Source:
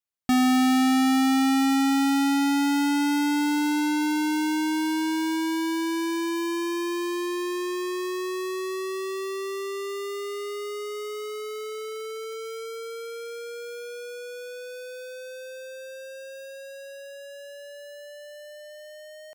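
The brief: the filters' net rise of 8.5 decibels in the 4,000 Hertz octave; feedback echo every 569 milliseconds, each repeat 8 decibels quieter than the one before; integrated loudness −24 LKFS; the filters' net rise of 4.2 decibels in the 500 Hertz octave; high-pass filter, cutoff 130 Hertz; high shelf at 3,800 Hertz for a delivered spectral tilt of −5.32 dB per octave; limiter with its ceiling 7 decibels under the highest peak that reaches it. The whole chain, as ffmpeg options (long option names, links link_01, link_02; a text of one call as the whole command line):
ffmpeg -i in.wav -af "highpass=130,equalizer=frequency=500:width_type=o:gain=6,highshelf=frequency=3800:gain=6,equalizer=frequency=4000:width_type=o:gain=7,alimiter=limit=-14dB:level=0:latency=1,aecho=1:1:569|1138|1707|2276|2845:0.398|0.159|0.0637|0.0255|0.0102,volume=1.5dB" out.wav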